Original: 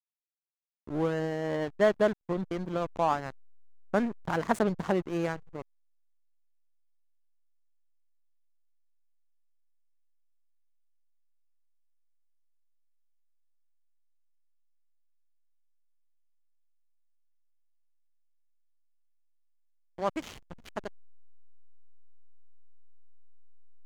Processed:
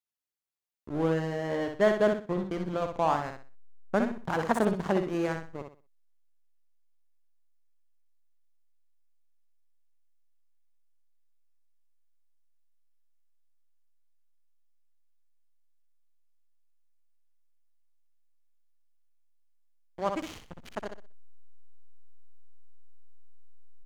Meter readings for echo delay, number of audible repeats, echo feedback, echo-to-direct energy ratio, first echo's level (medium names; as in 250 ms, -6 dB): 62 ms, 3, 29%, -5.5 dB, -6.0 dB